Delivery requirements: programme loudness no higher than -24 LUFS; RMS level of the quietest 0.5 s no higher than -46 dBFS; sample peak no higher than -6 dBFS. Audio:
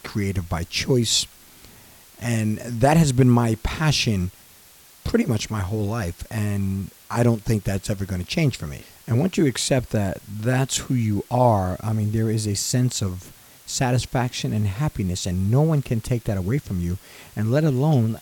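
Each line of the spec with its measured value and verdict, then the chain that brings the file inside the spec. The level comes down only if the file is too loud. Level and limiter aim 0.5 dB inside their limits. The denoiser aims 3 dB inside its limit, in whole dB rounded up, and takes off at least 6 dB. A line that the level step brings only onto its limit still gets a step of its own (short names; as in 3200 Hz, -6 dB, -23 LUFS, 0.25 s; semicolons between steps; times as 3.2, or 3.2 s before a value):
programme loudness -22.5 LUFS: fail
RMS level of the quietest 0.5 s -50 dBFS: OK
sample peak -5.0 dBFS: fail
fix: gain -2 dB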